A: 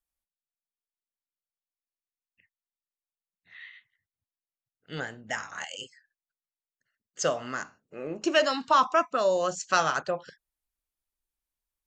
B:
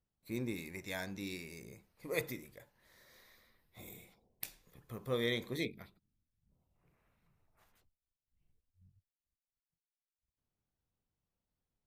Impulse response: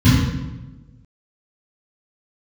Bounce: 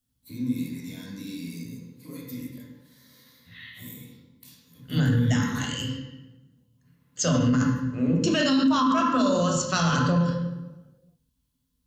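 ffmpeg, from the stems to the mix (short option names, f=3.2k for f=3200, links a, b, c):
-filter_complex "[0:a]highshelf=f=6.4k:g=-9.5,volume=-1dB,asplit=2[a][b];[b]volume=-18.5dB[c];[1:a]highpass=290,acompressor=threshold=-40dB:ratio=6,alimiter=level_in=14.5dB:limit=-24dB:level=0:latency=1:release=49,volume=-14.5dB,volume=-7dB,asplit=2[d][e];[e]volume=-11.5dB[f];[2:a]atrim=start_sample=2205[g];[c][f]amix=inputs=2:normalize=0[h];[h][g]afir=irnorm=-1:irlink=0[i];[a][d][i]amix=inputs=3:normalize=0,aexciter=amount=3.5:drive=4.3:freq=3.1k,alimiter=limit=-14.5dB:level=0:latency=1:release=14"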